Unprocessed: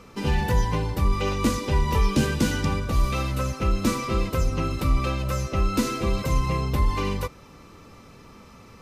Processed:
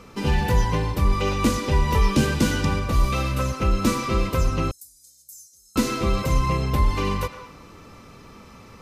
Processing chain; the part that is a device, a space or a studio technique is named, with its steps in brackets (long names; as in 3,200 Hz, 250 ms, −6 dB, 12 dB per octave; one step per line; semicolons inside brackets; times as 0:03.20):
filtered reverb send (on a send: high-pass filter 560 Hz + low-pass filter 4,800 Hz + convolution reverb RT60 0.85 s, pre-delay 94 ms, DRR 7.5 dB)
0:04.71–0:05.76: on the sum: inverse Chebyshev high-pass filter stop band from 2,900 Hz, stop band 50 dB
level +2 dB